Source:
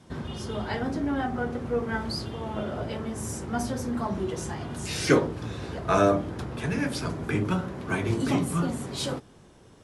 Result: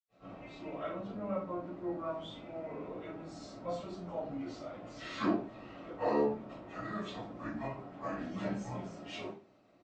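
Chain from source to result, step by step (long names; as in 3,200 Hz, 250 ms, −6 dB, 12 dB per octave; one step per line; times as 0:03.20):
sub-octave generator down 1 octave, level −5 dB
high-pass filter 270 Hz 12 dB per octave
pitch shifter −5.5 semitones
head-to-tape spacing loss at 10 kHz 23 dB
convolution reverb RT60 0.35 s, pre-delay 80 ms, DRR −60 dB
level +11.5 dB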